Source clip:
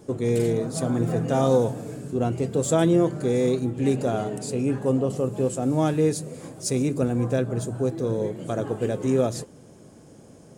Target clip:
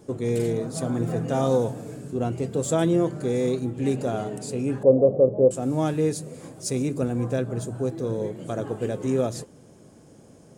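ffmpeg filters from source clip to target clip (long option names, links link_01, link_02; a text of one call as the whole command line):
ffmpeg -i in.wav -filter_complex "[0:a]asettb=1/sr,asplit=3[link_01][link_02][link_03];[link_01]atrim=end=4.834[link_04];[link_02]atrim=start=4.83:end=5.51,asetpts=PTS-STARTPTS,afade=type=in:duration=0.004:curve=qsin,afade=type=out:start_time=0.676:duration=0.004:curve=qsin,lowpass=frequency=570:width_type=q:width=4.9[link_05];[link_03]atrim=start=5.506[link_06];[link_04][link_05]acrossfade=duration=0.004:curve1=hsin:curve2=qsin[link_07];[link_07][link_06]acrossfade=duration=0.004:curve1=qsin:curve2=hsin,volume=-2dB" out.wav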